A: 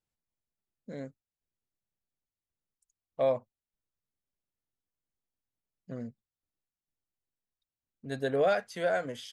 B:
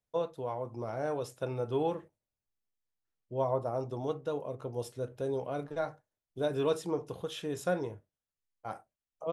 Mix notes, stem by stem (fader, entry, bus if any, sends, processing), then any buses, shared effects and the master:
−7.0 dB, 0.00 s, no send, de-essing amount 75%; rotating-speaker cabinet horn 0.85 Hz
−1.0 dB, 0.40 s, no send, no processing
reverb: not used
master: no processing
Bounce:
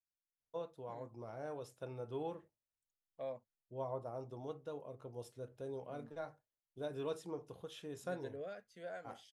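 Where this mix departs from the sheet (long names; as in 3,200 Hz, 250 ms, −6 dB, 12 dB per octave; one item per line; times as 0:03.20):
stem A −7.0 dB → −16.5 dB
stem B −1.0 dB → −11.0 dB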